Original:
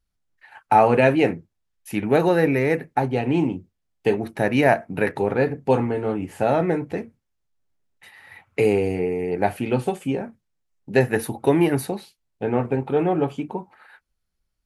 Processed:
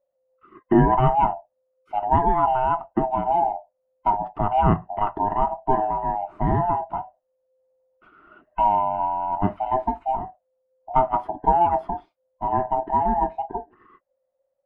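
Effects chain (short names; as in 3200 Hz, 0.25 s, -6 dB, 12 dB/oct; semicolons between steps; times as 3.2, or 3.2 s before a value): band-swap scrambler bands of 500 Hz; Chebyshev low-pass 1000 Hz, order 2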